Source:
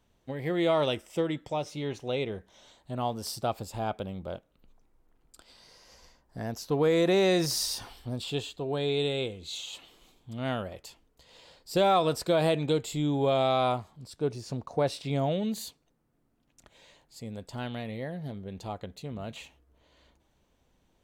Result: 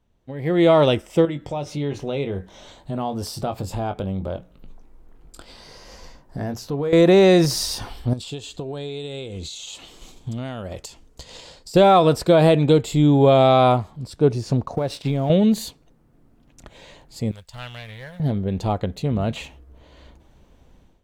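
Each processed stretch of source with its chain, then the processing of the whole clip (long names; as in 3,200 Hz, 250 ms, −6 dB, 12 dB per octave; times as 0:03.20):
0:01.25–0:06.93: double-tracking delay 21 ms −9.5 dB + downward compressor 2 to 1, threshold −43 dBFS + mains-hum notches 60/120/180 Hz
0:08.13–0:11.74: parametric band 6,900 Hz +10.5 dB 1.4 octaves + transient designer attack +5 dB, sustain −3 dB + downward compressor 12 to 1, threshold −41 dBFS
0:14.75–0:15.30: mu-law and A-law mismatch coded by A + downward compressor 12 to 1, threshold −31 dBFS
0:17.31–0:18.20: mu-law and A-law mismatch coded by A + guitar amp tone stack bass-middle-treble 10-0-10 + highs frequency-modulated by the lows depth 0.16 ms
whole clip: spectral tilt −1.5 dB per octave; automatic gain control gain up to 15.5 dB; level −3 dB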